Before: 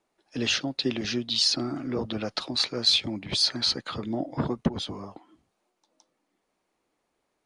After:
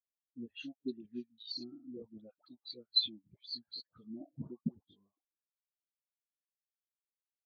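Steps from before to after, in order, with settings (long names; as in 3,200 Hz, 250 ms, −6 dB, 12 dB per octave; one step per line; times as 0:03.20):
notch filter 5,100 Hz, Q 7.4
all-pass dispersion highs, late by 101 ms, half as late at 1,000 Hz
every bin expanded away from the loudest bin 2.5 to 1
level −7.5 dB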